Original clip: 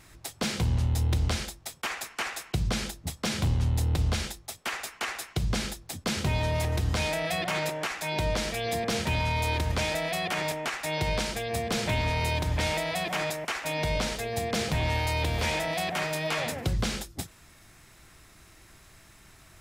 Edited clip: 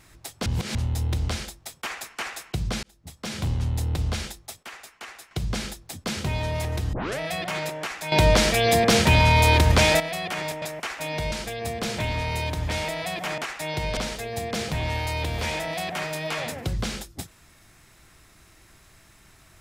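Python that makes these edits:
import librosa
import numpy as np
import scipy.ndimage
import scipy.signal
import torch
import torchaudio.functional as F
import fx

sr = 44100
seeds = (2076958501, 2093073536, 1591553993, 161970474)

y = fx.edit(x, sr, fx.reverse_span(start_s=0.46, length_s=0.29),
    fx.fade_in_span(start_s=2.83, length_s=0.66),
    fx.clip_gain(start_s=4.63, length_s=0.68, db=-8.0),
    fx.tape_start(start_s=6.93, length_s=0.26),
    fx.clip_gain(start_s=8.12, length_s=1.88, db=10.5),
    fx.swap(start_s=10.62, length_s=0.59, other_s=13.27, other_length_s=0.7), tone=tone)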